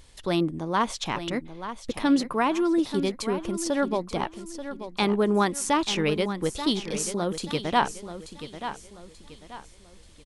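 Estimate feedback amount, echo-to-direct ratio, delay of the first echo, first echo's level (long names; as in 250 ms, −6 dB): 36%, −10.5 dB, 884 ms, −11.0 dB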